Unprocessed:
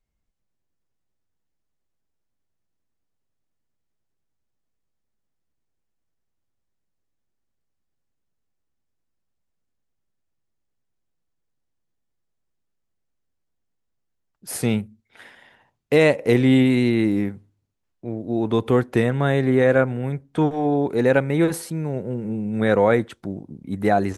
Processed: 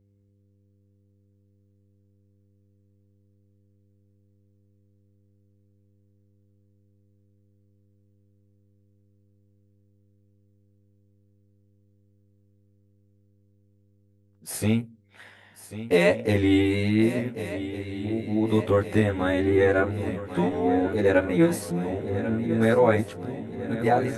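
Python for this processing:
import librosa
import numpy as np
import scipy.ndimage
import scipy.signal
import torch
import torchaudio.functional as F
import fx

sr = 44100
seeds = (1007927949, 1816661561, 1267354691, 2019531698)

y = fx.frame_reverse(x, sr, frame_ms=36.0)
y = fx.echo_swing(y, sr, ms=1455, ratio=3, feedback_pct=58, wet_db=-13.0)
y = fx.dmg_buzz(y, sr, base_hz=100.0, harmonics=5, level_db=-63.0, tilt_db=-7, odd_only=False)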